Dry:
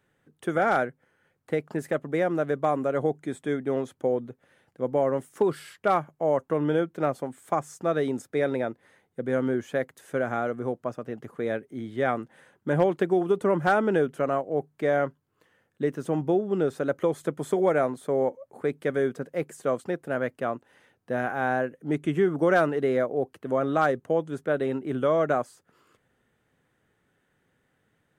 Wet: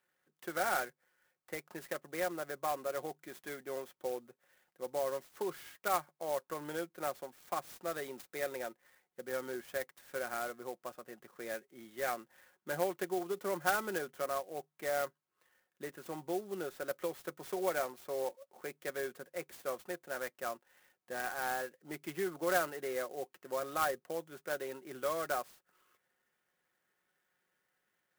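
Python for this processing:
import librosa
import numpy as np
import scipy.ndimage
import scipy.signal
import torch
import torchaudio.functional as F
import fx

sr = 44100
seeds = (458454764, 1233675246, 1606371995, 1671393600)

y = fx.highpass(x, sr, hz=1200.0, slope=6)
y = y + 0.45 * np.pad(y, (int(5.5 * sr / 1000.0), 0))[:len(y)]
y = fx.clock_jitter(y, sr, seeds[0], jitter_ms=0.047)
y = F.gain(torch.from_numpy(y), -5.5).numpy()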